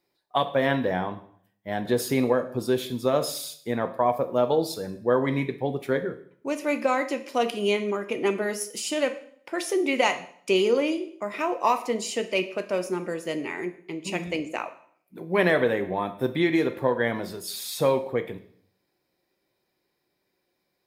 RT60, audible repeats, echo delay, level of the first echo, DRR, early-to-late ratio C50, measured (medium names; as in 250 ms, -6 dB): 0.60 s, no echo, no echo, no echo, 8.5 dB, 13.5 dB